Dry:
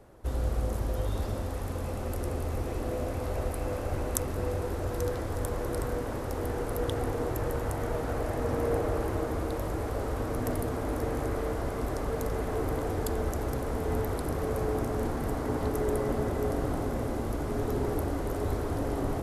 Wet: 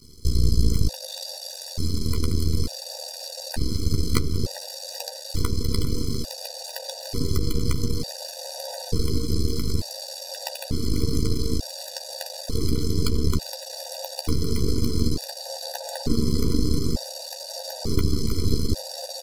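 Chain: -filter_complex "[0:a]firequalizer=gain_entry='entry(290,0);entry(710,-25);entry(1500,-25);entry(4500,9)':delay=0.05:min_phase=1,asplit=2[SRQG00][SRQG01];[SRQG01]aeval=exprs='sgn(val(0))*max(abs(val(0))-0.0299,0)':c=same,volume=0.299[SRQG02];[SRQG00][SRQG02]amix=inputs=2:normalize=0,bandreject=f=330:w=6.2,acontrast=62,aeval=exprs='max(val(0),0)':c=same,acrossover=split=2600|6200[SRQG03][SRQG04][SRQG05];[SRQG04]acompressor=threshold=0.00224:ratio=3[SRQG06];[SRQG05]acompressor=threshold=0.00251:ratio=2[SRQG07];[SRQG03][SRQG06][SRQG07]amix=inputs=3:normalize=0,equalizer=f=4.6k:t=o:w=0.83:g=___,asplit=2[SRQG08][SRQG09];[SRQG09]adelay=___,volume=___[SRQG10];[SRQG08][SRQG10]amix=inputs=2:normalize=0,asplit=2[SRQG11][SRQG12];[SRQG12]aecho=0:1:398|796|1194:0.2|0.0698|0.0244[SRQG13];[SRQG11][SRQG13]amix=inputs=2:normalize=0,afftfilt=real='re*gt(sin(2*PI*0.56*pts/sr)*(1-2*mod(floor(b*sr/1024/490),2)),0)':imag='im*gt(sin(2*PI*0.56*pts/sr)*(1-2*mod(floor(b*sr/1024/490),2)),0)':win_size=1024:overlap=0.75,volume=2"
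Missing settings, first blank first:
14, 13, 0.376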